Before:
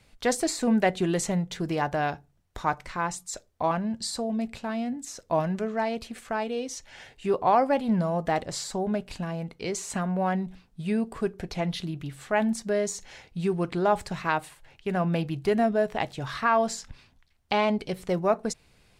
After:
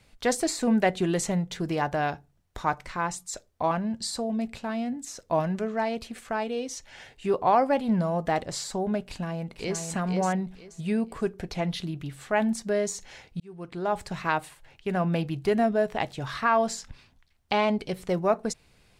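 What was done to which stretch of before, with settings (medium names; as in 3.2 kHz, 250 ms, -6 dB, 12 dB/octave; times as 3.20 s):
9.02–9.84 s: echo throw 480 ms, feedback 25%, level -5.5 dB
13.40–14.22 s: fade in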